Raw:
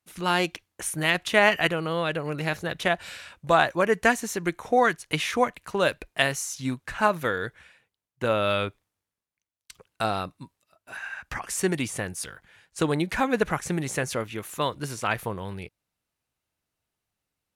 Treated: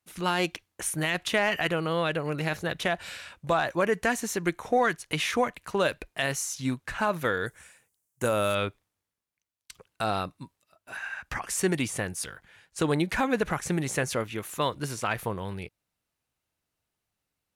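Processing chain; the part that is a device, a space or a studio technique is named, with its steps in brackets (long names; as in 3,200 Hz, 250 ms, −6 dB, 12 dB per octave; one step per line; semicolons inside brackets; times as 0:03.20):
soft clipper into limiter (soft clipping −6.5 dBFS, distortion −25 dB; brickwall limiter −15 dBFS, peak gain reduction 7 dB)
0:07.46–0:08.55: high shelf with overshoot 5,400 Hz +13 dB, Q 1.5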